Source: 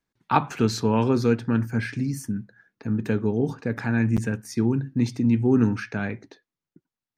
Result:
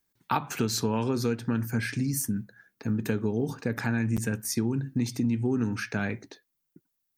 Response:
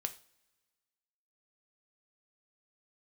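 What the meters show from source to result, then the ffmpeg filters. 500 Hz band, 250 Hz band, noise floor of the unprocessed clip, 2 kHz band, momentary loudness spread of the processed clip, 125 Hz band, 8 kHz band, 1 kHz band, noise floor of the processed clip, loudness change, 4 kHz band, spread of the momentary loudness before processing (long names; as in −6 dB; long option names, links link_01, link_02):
−6.0 dB, −5.5 dB, below −85 dBFS, −2.0 dB, 4 LU, −4.5 dB, +6.0 dB, −6.0 dB, −80 dBFS, −5.0 dB, +1.0 dB, 9 LU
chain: -af "aemphasis=mode=production:type=50fm,acompressor=threshold=-23dB:ratio=6"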